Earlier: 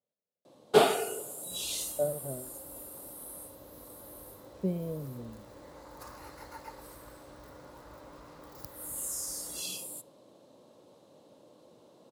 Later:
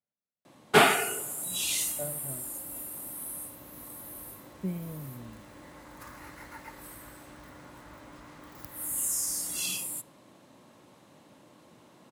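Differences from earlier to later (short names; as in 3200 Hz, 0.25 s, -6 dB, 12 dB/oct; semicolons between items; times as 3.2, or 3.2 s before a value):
first sound +7.0 dB; master: add ten-band EQ 500 Hz -12 dB, 2000 Hz +9 dB, 4000 Hz -6 dB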